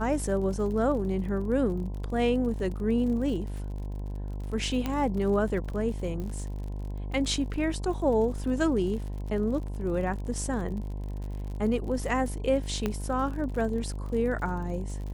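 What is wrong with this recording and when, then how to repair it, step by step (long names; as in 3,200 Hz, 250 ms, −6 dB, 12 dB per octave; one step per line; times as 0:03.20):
mains buzz 50 Hz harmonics 21 −34 dBFS
surface crackle 50 per second −37 dBFS
0:04.86: click −16 dBFS
0:06.20: click −25 dBFS
0:12.86: click −15 dBFS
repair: click removal
hum removal 50 Hz, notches 21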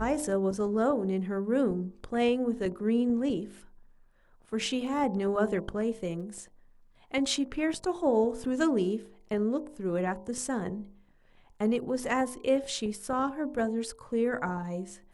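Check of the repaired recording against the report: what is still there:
0:04.86: click
0:06.20: click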